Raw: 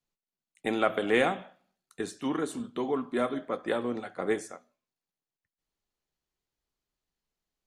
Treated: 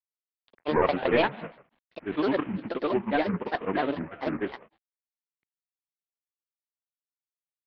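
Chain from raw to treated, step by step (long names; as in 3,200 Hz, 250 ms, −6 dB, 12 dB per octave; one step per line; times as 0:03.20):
variable-slope delta modulation 16 kbit/s
granular cloud, pitch spread up and down by 7 semitones
level +5.5 dB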